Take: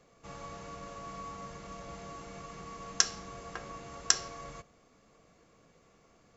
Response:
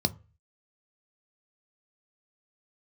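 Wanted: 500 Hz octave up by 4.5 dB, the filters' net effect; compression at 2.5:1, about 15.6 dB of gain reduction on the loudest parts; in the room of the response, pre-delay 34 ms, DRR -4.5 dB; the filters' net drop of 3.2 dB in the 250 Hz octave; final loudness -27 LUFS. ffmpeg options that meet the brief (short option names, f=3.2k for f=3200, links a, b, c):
-filter_complex "[0:a]equalizer=f=250:t=o:g=-7,equalizer=f=500:t=o:g=7,acompressor=threshold=-45dB:ratio=2.5,asplit=2[a][b];[1:a]atrim=start_sample=2205,adelay=34[c];[b][c]afir=irnorm=-1:irlink=0,volume=-3dB[d];[a][d]amix=inputs=2:normalize=0,volume=11.5dB"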